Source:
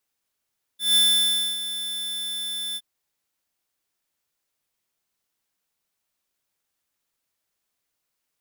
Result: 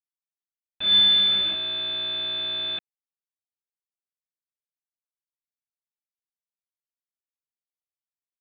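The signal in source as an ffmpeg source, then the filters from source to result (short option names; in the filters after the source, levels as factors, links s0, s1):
-f lavfi -i "aevalsrc='0.141*(2*lt(mod(3520*t,1),0.5)-1)':d=2.017:s=44100,afade=t=in:d=0.164,afade=t=out:st=0.164:d=0.617:silence=0.224,afade=t=out:st=1.97:d=0.047"
-af "aresample=8000,acrusher=bits=5:mix=0:aa=0.000001,aresample=44100,crystalizer=i=1.5:c=0,lowshelf=f=380:g=5.5"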